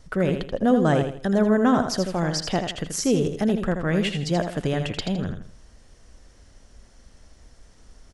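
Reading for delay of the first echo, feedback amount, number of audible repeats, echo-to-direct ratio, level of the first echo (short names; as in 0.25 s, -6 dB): 81 ms, 33%, 3, -6.5 dB, -7.0 dB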